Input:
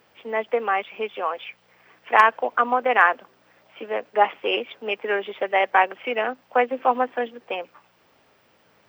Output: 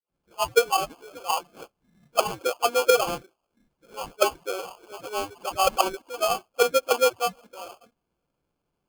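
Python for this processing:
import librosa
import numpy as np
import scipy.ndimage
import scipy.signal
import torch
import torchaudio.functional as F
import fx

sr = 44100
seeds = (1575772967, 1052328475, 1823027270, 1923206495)

y = fx.spec_delay(x, sr, highs='late', ms=451)
y = fx.auto_wah(y, sr, base_hz=350.0, top_hz=2100.0, q=4.2, full_db=-17.0, direction='down')
y = fx.noise_reduce_blind(y, sr, reduce_db=16)
y = fx.sample_hold(y, sr, seeds[0], rate_hz=1900.0, jitter_pct=0)
y = F.gain(torch.from_numpy(y), 8.0).numpy()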